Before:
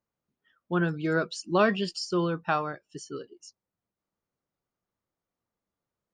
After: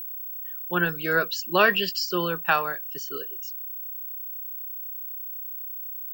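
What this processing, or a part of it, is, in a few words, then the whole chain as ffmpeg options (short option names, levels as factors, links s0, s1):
old television with a line whistle: -af "highpass=f=180:w=0.5412,highpass=f=180:w=1.3066,equalizer=f=220:t=q:w=4:g=-9,equalizer=f=310:t=q:w=4:g=-8,equalizer=f=670:t=q:w=4:g=-3,equalizer=f=1700:t=q:w=4:g=8,equalizer=f=2800:t=q:w=4:g=9,equalizer=f=4500:t=q:w=4:g=5,lowpass=f=7700:w=0.5412,lowpass=f=7700:w=1.3066,aeval=exprs='val(0)+0.0158*sin(2*PI*15734*n/s)':c=same,volume=1.5"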